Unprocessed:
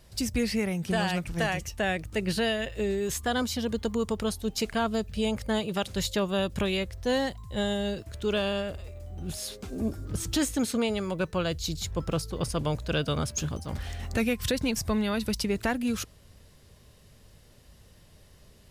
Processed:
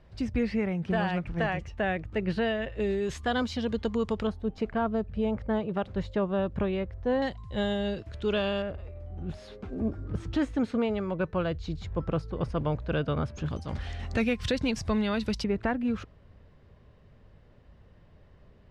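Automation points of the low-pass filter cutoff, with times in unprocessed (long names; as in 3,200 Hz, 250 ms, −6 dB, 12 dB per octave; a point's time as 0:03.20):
2,100 Hz
from 0:02.80 3,600 Hz
from 0:04.27 1,400 Hz
from 0:07.22 3,500 Hz
from 0:08.62 1,900 Hz
from 0:13.46 4,300 Hz
from 0:15.44 1,800 Hz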